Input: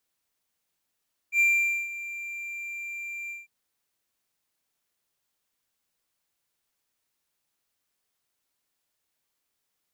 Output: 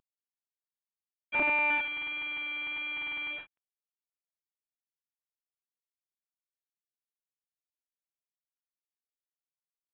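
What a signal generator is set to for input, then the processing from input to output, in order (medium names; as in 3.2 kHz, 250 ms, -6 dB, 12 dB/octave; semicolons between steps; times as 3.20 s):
ADSR triangle 2.37 kHz, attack 77 ms, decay 482 ms, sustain -16 dB, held 1.98 s, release 170 ms -15.5 dBFS
CVSD coder 16 kbps; vibrato 1.5 Hz 6.9 cents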